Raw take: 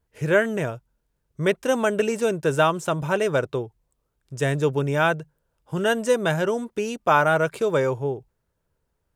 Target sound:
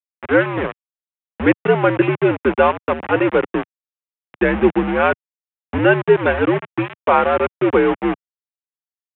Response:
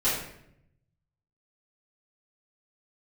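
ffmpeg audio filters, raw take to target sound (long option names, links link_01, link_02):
-af "bandreject=frequency=1400:width=14,afftfilt=real='re*gte(hypot(re,im),0.0447)':imag='im*gte(hypot(re,im),0.0447)':win_size=1024:overlap=0.75,dynaudnorm=framelen=210:gausssize=3:maxgain=14dB,aresample=8000,aeval=exprs='val(0)*gte(abs(val(0)),0.15)':channel_layout=same,aresample=44100,highpass=frequency=200:width_type=q:width=0.5412,highpass=frequency=200:width_type=q:width=1.307,lowpass=frequency=2800:width_type=q:width=0.5176,lowpass=frequency=2800:width_type=q:width=0.7071,lowpass=frequency=2800:width_type=q:width=1.932,afreqshift=-83,volume=-1dB"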